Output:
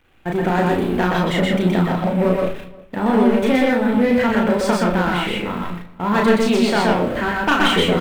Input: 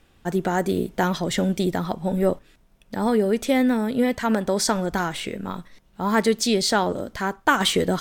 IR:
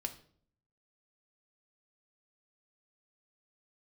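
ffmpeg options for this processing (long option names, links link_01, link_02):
-filter_complex "[0:a]aeval=exprs='val(0)+0.5*0.0299*sgn(val(0))':channel_layout=same,agate=range=-24dB:threshold=-33dB:ratio=16:detection=peak,highshelf=frequency=3700:width_type=q:width=1.5:gain=-10.5,aeval=exprs='clip(val(0),-1,0.126)':channel_layout=same,asplit=2[link_01][link_02];[link_02]adelay=34,volume=-2.5dB[link_03];[link_01][link_03]amix=inputs=2:normalize=0,asplit=2[link_04][link_05];[link_05]adelay=355.7,volume=-23dB,highshelf=frequency=4000:gain=-8[link_06];[link_04][link_06]amix=inputs=2:normalize=0,asplit=2[link_07][link_08];[1:a]atrim=start_sample=2205,adelay=123[link_09];[link_08][link_09]afir=irnorm=-1:irlink=0,volume=0dB[link_10];[link_07][link_10]amix=inputs=2:normalize=0"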